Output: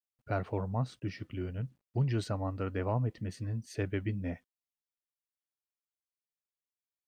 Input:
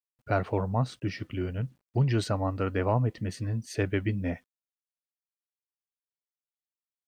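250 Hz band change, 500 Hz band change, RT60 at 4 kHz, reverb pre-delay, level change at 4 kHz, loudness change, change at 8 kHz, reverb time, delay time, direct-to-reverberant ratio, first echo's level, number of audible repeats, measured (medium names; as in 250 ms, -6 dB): -5.5 dB, -6.5 dB, no reverb, no reverb, -7.5 dB, -5.5 dB, -7.5 dB, no reverb, no echo, no reverb, no echo, no echo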